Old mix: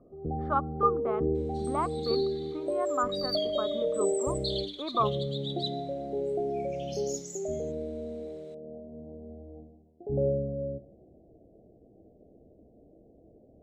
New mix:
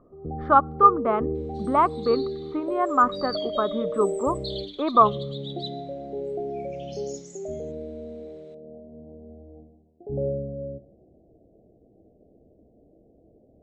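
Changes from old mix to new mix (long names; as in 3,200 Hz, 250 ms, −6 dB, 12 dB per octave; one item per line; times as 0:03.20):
speech +11.5 dB
second sound: send +11.0 dB
master: add high-frequency loss of the air 80 metres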